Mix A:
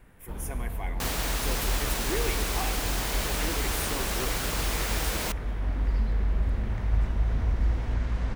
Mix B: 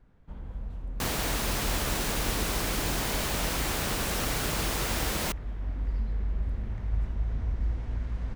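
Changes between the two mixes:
speech: muted; first sound -9.5 dB; reverb: off; master: add bass shelf 360 Hz +5.5 dB

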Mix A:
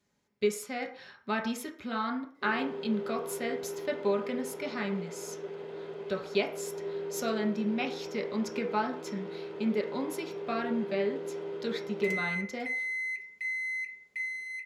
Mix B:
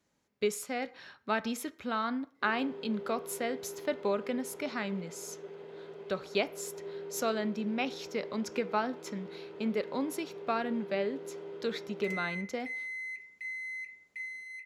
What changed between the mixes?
speech: send -10.0 dB; background -5.5 dB

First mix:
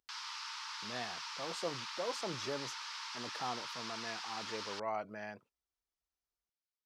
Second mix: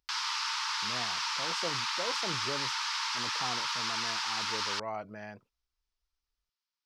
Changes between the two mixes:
background +11.0 dB; master: remove high-pass 220 Hz 6 dB/octave

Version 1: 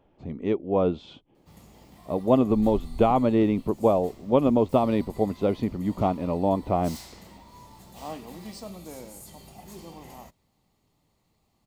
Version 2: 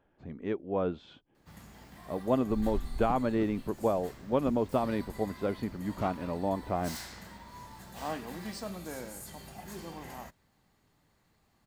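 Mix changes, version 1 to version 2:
speech -8.0 dB; master: add peaking EQ 1.6 kHz +14 dB 0.44 oct

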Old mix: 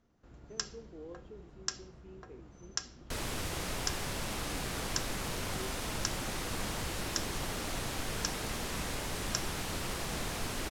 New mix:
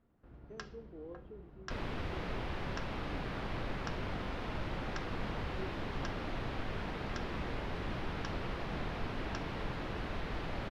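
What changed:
second sound: entry -1.40 s; master: add distance through air 340 m

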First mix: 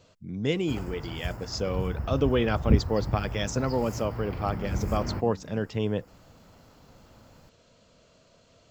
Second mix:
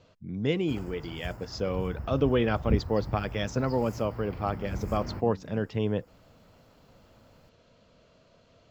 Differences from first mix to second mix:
speech: add distance through air 120 m; background -5.0 dB

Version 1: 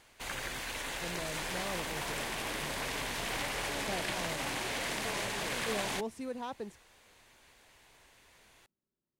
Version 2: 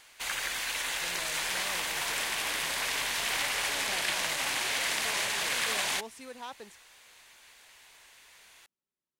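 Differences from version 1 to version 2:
speech -3.5 dB; master: add tilt shelf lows -8 dB, about 680 Hz

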